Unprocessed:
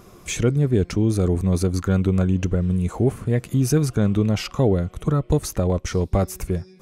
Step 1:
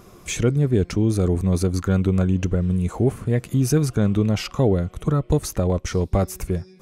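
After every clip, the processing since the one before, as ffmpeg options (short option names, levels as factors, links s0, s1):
-af anull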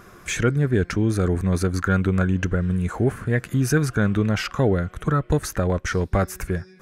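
-af "equalizer=f=1600:t=o:w=0.69:g=14.5,volume=0.841"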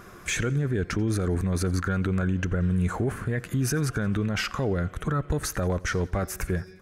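-af "alimiter=limit=0.126:level=0:latency=1:release=33,aecho=1:1:88|176|264|352:0.0708|0.0396|0.0222|0.0124"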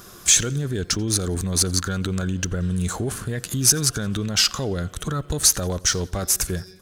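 -filter_complex "[0:a]aexciter=amount=6.5:drive=6.9:freq=3200,asplit=2[s0][s1];[s1]adynamicsmooth=sensitivity=7:basefreq=3200,volume=1.33[s2];[s0][s2]amix=inputs=2:normalize=0,volume=0.447"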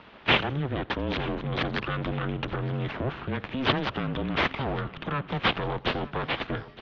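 -af "aresample=16000,aeval=exprs='abs(val(0))':c=same,aresample=44100,aecho=1:1:915|1830:0.126|0.0352,highpass=f=210:t=q:w=0.5412,highpass=f=210:t=q:w=1.307,lowpass=f=3400:t=q:w=0.5176,lowpass=f=3400:t=q:w=0.7071,lowpass=f=3400:t=q:w=1.932,afreqshift=-140,volume=1.26"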